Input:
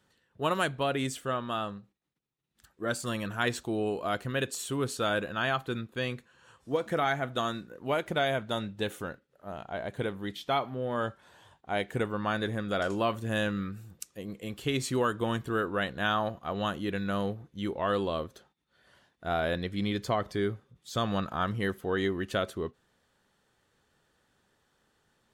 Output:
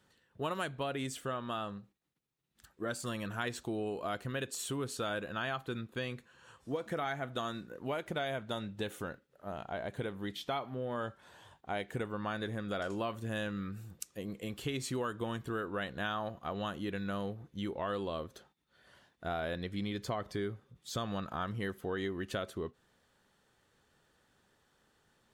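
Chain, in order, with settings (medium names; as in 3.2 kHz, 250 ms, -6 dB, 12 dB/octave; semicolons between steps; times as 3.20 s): compression 2.5:1, threshold -36 dBFS, peak gain reduction 9 dB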